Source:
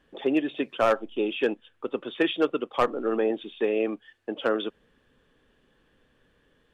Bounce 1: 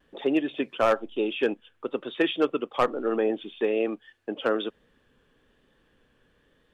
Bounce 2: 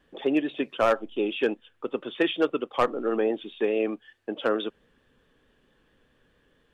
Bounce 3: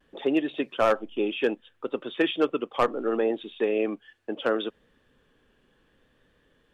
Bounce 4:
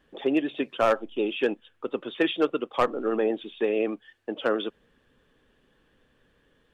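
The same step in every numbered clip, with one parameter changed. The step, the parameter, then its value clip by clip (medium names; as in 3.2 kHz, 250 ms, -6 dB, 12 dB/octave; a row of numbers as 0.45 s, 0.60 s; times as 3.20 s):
vibrato, rate: 1.1 Hz, 4.6 Hz, 0.68 Hz, 11 Hz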